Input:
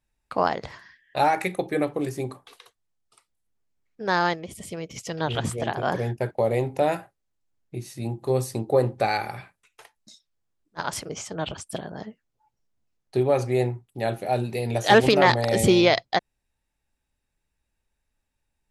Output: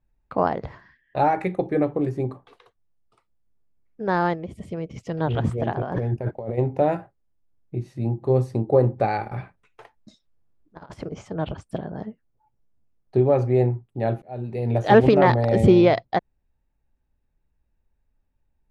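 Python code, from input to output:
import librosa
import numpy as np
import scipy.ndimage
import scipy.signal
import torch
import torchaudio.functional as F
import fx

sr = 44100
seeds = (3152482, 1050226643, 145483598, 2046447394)

y = fx.over_compress(x, sr, threshold_db=-31.0, ratio=-1.0, at=(5.8, 6.57), fade=0.02)
y = fx.over_compress(y, sr, threshold_db=-37.0, ratio=-0.5, at=(9.24, 11.12))
y = fx.edit(y, sr, fx.fade_in_span(start_s=14.22, length_s=0.51), tone=tone)
y = fx.lowpass(y, sr, hz=1300.0, slope=6)
y = fx.tilt_eq(y, sr, slope=-1.5)
y = y * librosa.db_to_amplitude(1.5)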